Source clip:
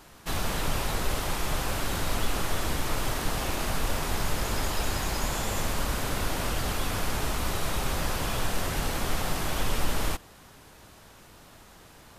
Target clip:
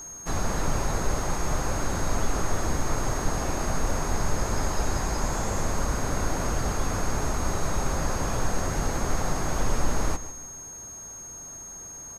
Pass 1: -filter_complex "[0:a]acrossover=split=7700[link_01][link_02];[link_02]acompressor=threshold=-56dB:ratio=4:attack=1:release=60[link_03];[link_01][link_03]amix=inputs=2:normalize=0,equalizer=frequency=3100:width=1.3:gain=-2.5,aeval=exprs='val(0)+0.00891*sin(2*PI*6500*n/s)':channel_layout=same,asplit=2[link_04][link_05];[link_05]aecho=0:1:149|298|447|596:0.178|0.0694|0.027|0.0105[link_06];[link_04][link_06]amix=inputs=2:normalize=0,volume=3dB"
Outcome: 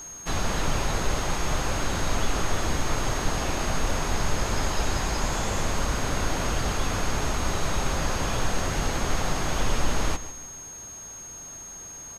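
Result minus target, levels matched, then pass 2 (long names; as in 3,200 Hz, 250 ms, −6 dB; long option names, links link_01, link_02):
4,000 Hz band +5.5 dB
-filter_complex "[0:a]acrossover=split=7700[link_01][link_02];[link_02]acompressor=threshold=-56dB:ratio=4:attack=1:release=60[link_03];[link_01][link_03]amix=inputs=2:normalize=0,equalizer=frequency=3100:width=1.3:gain=-13,aeval=exprs='val(0)+0.00891*sin(2*PI*6500*n/s)':channel_layout=same,asplit=2[link_04][link_05];[link_05]aecho=0:1:149|298|447|596:0.178|0.0694|0.027|0.0105[link_06];[link_04][link_06]amix=inputs=2:normalize=0,volume=3dB"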